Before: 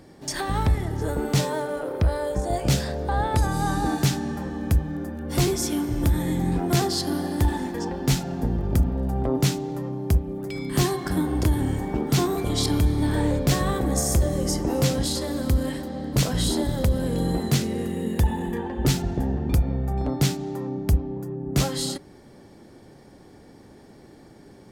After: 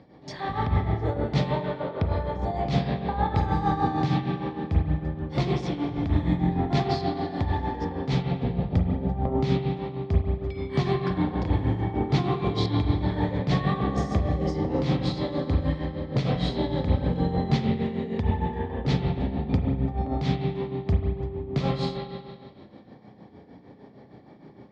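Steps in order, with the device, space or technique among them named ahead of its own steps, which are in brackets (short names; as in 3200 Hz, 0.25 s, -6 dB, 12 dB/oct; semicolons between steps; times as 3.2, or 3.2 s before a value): combo amplifier with spring reverb and tremolo (spring tank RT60 1.9 s, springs 33/45 ms, chirp 55 ms, DRR -1 dB; tremolo 6.5 Hz, depth 63%; speaker cabinet 80–3900 Hz, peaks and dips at 350 Hz -6 dB, 1500 Hz -8 dB, 2800 Hz -6 dB)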